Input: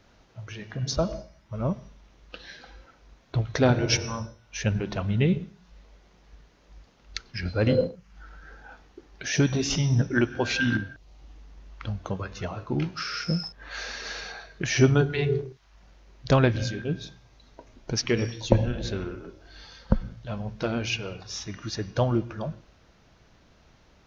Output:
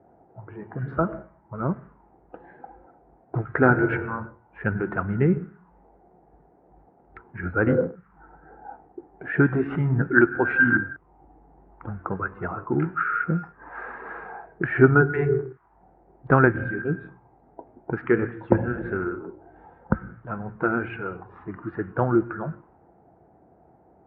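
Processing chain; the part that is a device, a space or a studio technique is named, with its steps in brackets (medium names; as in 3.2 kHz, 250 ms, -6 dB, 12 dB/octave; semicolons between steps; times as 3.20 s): envelope filter bass rig (touch-sensitive low-pass 700–1400 Hz up, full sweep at -28.5 dBFS; cabinet simulation 71–2100 Hz, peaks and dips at 72 Hz -7 dB, 110 Hz -7 dB, 220 Hz -3 dB, 350 Hz +5 dB, 590 Hz -9 dB, 1.1 kHz -7 dB); trim +3 dB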